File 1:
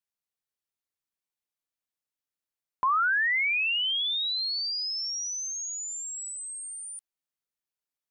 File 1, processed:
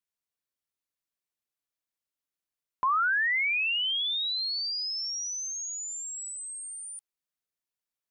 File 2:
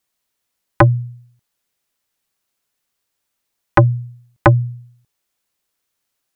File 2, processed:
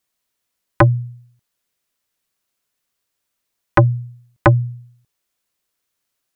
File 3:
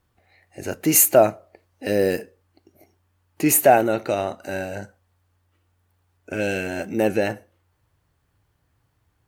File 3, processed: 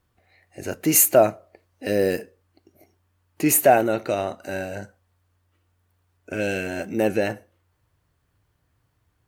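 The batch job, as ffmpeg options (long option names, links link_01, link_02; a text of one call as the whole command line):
ffmpeg -i in.wav -af "bandreject=frequency=830:width=18,volume=-1dB" out.wav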